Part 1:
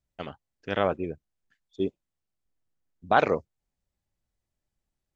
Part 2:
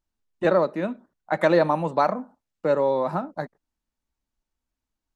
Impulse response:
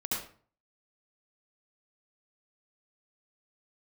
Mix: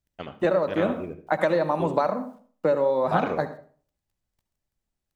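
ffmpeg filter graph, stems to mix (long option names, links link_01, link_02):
-filter_complex "[0:a]volume=-1dB,asplit=2[link_01][link_02];[link_02]volume=-16.5dB[link_03];[1:a]adynamicequalizer=threshold=0.02:dfrequency=560:dqfactor=4.9:tfrequency=560:tqfactor=4.9:attack=5:release=100:ratio=0.375:range=2:mode=boostabove:tftype=bell,acompressor=threshold=-22dB:ratio=10,acrusher=bits=11:mix=0:aa=0.000001,volume=2.5dB,asplit=3[link_04][link_05][link_06];[link_05]volume=-15dB[link_07];[link_06]apad=whole_len=227553[link_08];[link_01][link_08]sidechaincompress=threshold=-27dB:ratio=8:attack=16:release=583[link_09];[2:a]atrim=start_sample=2205[link_10];[link_03][link_07]amix=inputs=2:normalize=0[link_11];[link_11][link_10]afir=irnorm=-1:irlink=0[link_12];[link_09][link_04][link_12]amix=inputs=3:normalize=0"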